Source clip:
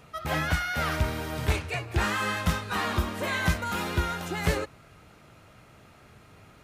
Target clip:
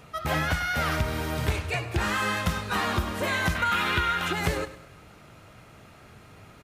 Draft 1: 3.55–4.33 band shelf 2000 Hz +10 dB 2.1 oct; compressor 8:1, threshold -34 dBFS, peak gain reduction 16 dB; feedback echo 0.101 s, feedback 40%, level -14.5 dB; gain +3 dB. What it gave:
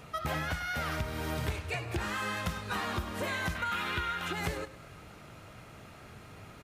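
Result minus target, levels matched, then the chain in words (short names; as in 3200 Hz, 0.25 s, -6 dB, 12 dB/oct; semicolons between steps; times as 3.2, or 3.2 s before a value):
compressor: peak gain reduction +8.5 dB
3.55–4.33 band shelf 2000 Hz +10 dB 2.1 oct; compressor 8:1, threshold -24.5 dBFS, peak gain reduction 7.5 dB; feedback echo 0.101 s, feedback 40%, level -14.5 dB; gain +3 dB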